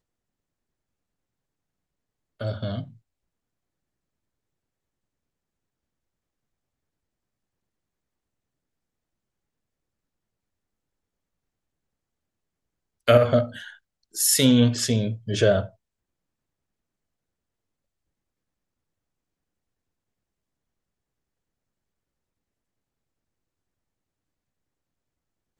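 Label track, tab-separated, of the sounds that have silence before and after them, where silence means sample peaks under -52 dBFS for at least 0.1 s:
2.400000	2.980000	sound
13.070000	13.790000	sound
14.130000	15.750000	sound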